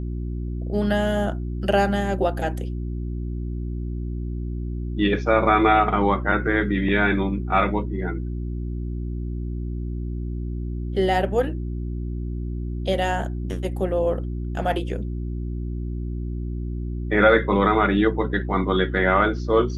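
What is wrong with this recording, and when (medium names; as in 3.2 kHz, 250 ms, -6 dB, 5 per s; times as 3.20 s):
hum 60 Hz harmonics 6 -28 dBFS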